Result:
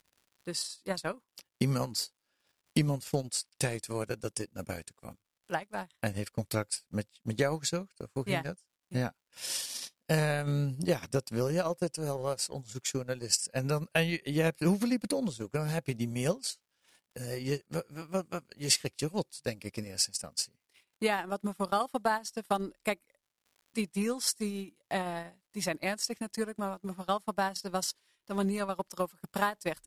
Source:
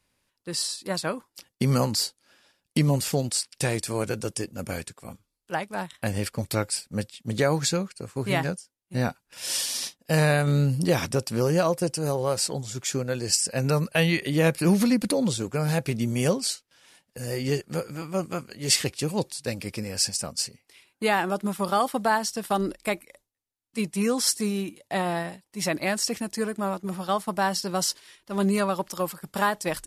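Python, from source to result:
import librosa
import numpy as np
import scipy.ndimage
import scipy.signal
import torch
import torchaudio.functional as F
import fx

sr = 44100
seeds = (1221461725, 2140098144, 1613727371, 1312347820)

y = fx.dmg_crackle(x, sr, seeds[0], per_s=220.0, level_db=-47.0)
y = fx.transient(y, sr, attack_db=6, sustain_db=-11)
y = y * librosa.db_to_amplitude(-8.5)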